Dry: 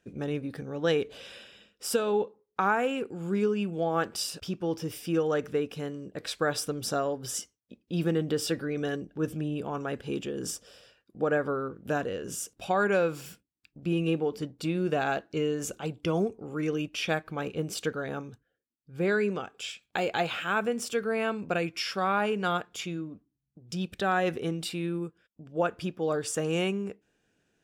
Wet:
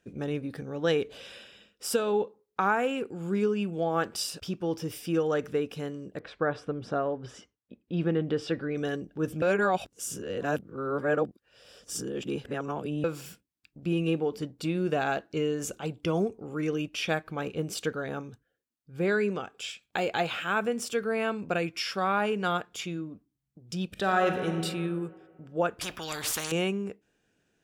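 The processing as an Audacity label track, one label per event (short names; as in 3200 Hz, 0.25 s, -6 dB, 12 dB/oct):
6.180000	8.730000	LPF 1700 Hz -> 3500 Hz
9.420000	13.040000	reverse
23.850000	24.600000	reverb throw, RT60 2 s, DRR 4 dB
25.810000	26.520000	spectral compressor 4:1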